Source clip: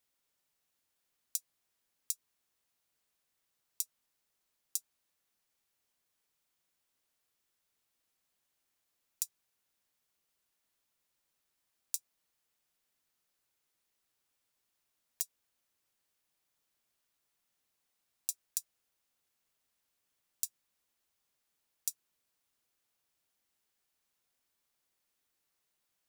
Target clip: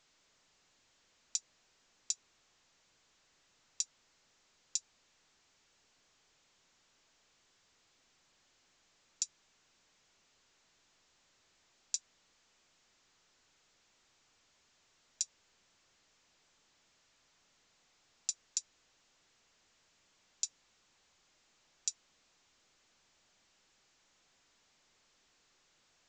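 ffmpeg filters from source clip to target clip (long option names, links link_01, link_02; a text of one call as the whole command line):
ffmpeg -i in.wav -af "volume=5.5dB" -ar 16000 -c:a pcm_alaw out.wav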